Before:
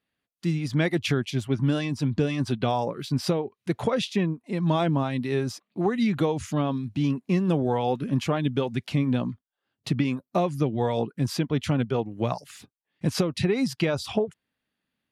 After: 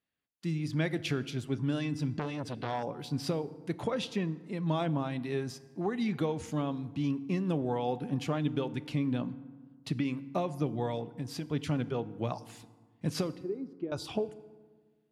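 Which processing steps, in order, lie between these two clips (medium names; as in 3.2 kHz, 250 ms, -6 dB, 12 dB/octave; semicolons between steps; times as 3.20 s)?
10.95–11.49 s: compression, threshold -26 dBFS, peak gain reduction 6.5 dB; 13.33–13.92 s: auto-wah 350–2300 Hz, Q 3.4, down, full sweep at -29 dBFS; FDN reverb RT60 1.5 s, low-frequency decay 1.3×, high-frequency decay 0.55×, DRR 14.5 dB; 2.19–2.83 s: transformer saturation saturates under 1 kHz; trim -7.5 dB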